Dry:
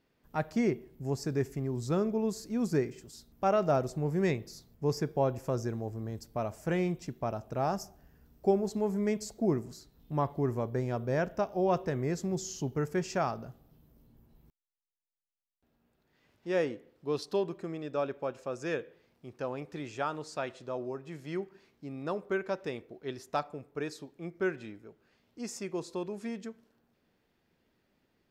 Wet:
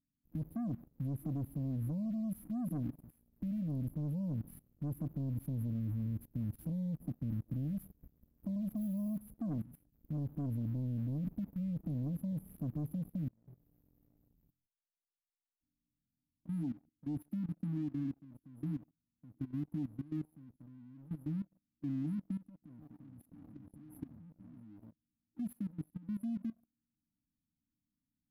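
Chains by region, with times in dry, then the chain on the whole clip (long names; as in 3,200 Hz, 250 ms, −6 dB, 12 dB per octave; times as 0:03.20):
0:08.76–0:09.22: one scale factor per block 5 bits + flat-topped bell 640 Hz +14 dB 1 octave
0:13.28–0:16.48: downward compressor, threshold −56 dBFS + flutter between parallel walls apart 4.1 metres, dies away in 0.34 s
0:22.48–0:24.60: downward compressor 10 to 1, threshold −38 dBFS + delay with pitch and tempo change per echo 301 ms, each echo −4 semitones, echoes 3, each echo −6 dB
whole clip: brick-wall band-stop 320–9,800 Hz; leveller curve on the samples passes 2; output level in coarse steps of 18 dB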